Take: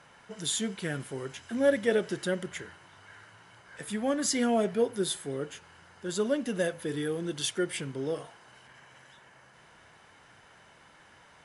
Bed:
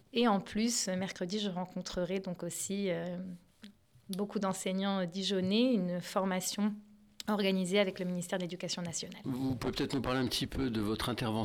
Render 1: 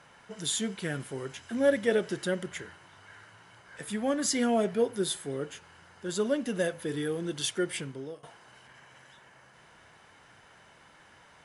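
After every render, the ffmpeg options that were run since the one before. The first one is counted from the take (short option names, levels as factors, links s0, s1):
-filter_complex "[0:a]asplit=2[s0][s1];[s0]atrim=end=8.23,asetpts=PTS-STARTPTS,afade=t=out:st=7.77:d=0.46:silence=0.0891251[s2];[s1]atrim=start=8.23,asetpts=PTS-STARTPTS,afade=t=in:d=0.004:c=hsin:silence=0.0891251[s3];[s2][s3]concat=n=2:v=0:a=1"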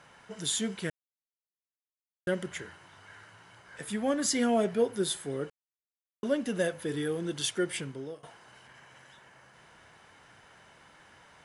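-filter_complex "[0:a]asplit=5[s0][s1][s2][s3][s4];[s0]atrim=end=0.9,asetpts=PTS-STARTPTS,afade=t=out:st=0.896:d=0.004:c=hsin[s5];[s1]atrim=start=0.9:end=2.27,asetpts=PTS-STARTPTS,volume=0[s6];[s2]atrim=start=2.27:end=5.5,asetpts=PTS-STARTPTS,afade=t=in:d=0.004:c=hsin,afade=t=out:st=3.226:d=0.004:c=hsin[s7];[s3]atrim=start=5.5:end=6.23,asetpts=PTS-STARTPTS,volume=0[s8];[s4]atrim=start=6.23,asetpts=PTS-STARTPTS,afade=t=in:d=0.004:c=hsin[s9];[s5][s6][s7][s8][s9]concat=n=5:v=0:a=1"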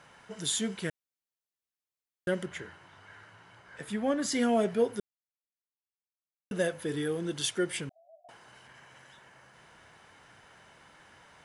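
-filter_complex "[0:a]asettb=1/sr,asplit=3[s0][s1][s2];[s0]atrim=end=2.454[s3];[s1]atrim=start=2.45:end=4.32,asetpts=PTS-STARTPTS,afade=t=in:d=0.004:c=qsin,afade=t=out:st=1.866:d=0.004:c=qsin,highshelf=f=5600:g=-9[s4];[s2]atrim=start=4.316[s5];[s3][s4]acrossfade=d=0.004:c1=hsin:c2=qsin[s6];[s6][s5]acrossfade=d=0.004:c1=qsin:c2=hsin,asettb=1/sr,asplit=3[s7][s8][s9];[s7]atrim=end=7.894[s10];[s8]atrim=start=7.89:end=8.29,asetpts=PTS-STARTPTS,afade=t=in:d=0.004:c=qsin,afade=t=out:st=0.396:d=0.004:c=qsin,asuperpass=centerf=670:order=12:qfactor=4.2[s11];[s9]atrim=start=8.286[s12];[s10][s11]acrossfade=d=0.004:c1=hsin:c2=qsin[s13];[s13][s12]acrossfade=d=0.004:c1=qsin:c2=hsin,asplit=3[s14][s15][s16];[s14]atrim=end=5,asetpts=PTS-STARTPTS,afade=t=out:st=4.996:d=0.004:c=hsin[s17];[s15]atrim=start=5:end=6.51,asetpts=PTS-STARTPTS,volume=0[s18];[s16]atrim=start=6.51,asetpts=PTS-STARTPTS,afade=t=in:d=0.004:c=hsin[s19];[s17][s18][s19]concat=n=3:v=0:a=1"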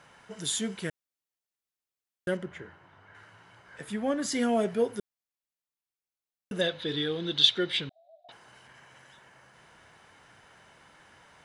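-filter_complex "[0:a]asettb=1/sr,asplit=3[s0][s1][s2];[s0]atrim=end=2.374[s3];[s1]atrim=start=2.37:end=3.15,asetpts=PTS-STARTPTS,afade=t=in:d=0.004:c=qsin,afade=t=out:st=0.776:d=0.004:c=qsin,lowpass=f=1600:p=1[s4];[s2]atrim=start=3.146[s5];[s3][s4]acrossfade=d=0.004:c1=hsin:c2=qsin[s6];[s6][s5]acrossfade=d=0.004:c1=qsin:c2=hsin,asettb=1/sr,asplit=3[s7][s8][s9];[s7]atrim=end=6.614[s10];[s8]atrim=start=6.61:end=8.32,asetpts=PTS-STARTPTS,afade=t=in:d=0.004:c=qsin,afade=t=out:st=1.706:d=0.004:c=qsin,lowpass=f=3800:t=q:w=10[s11];[s9]atrim=start=8.316[s12];[s10][s11]acrossfade=d=0.004:c1=hsin:c2=qsin[s13];[s13][s12]acrossfade=d=0.004:c1=qsin:c2=hsin"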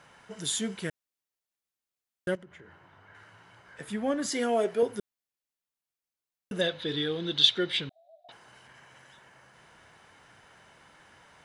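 -filter_complex "[0:a]asettb=1/sr,asplit=3[s0][s1][s2];[s0]atrim=end=2.354[s3];[s1]atrim=start=2.35:end=3.79,asetpts=PTS-STARTPTS,afade=t=in:d=0.004:c=qsin,afade=t=out:st=1.436:d=0.004:c=qsin,acompressor=threshold=0.00398:ratio=4:attack=3.2:release=140:knee=1:detection=peak[s4];[s2]atrim=start=3.786[s5];[s3][s4]acrossfade=d=0.004:c1=hsin:c2=qsin[s6];[s6][s5]acrossfade=d=0.004:c1=qsin:c2=hsin,asettb=1/sr,asplit=3[s7][s8][s9];[s7]atrim=end=4.304[s10];[s8]atrim=start=4.3:end=4.83,asetpts=PTS-STARTPTS,afade=t=in:d=0.004:c=qsin,afade=t=out:st=0.526:d=0.004:c=qsin,lowshelf=f=250:t=q:w=1.5:g=-8.5[s11];[s9]atrim=start=4.826[s12];[s10][s11]acrossfade=d=0.004:c1=hsin:c2=qsin[s13];[s13][s12]acrossfade=d=0.004:c1=qsin:c2=hsin"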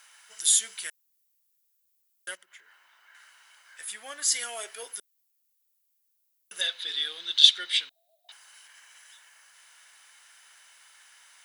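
-af "highpass=1400,aemphasis=mode=production:type=75fm"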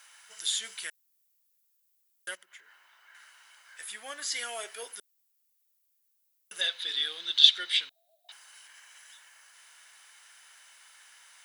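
-filter_complex "[0:a]acrossover=split=4800[s0][s1];[s1]acompressor=threshold=0.0126:ratio=4:attack=1:release=60[s2];[s0][s2]amix=inputs=2:normalize=0"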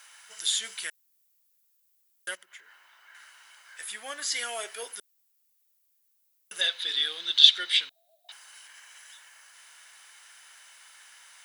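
-af "volume=1.41,alimiter=limit=0.891:level=0:latency=1"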